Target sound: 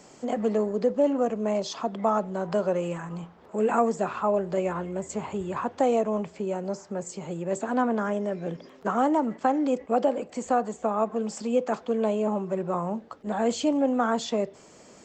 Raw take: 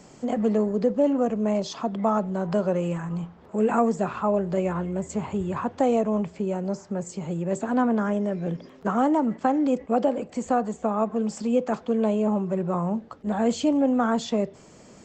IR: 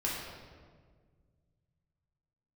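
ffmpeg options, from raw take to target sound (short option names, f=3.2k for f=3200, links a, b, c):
-af "bass=f=250:g=-8,treble=f=4k:g=1"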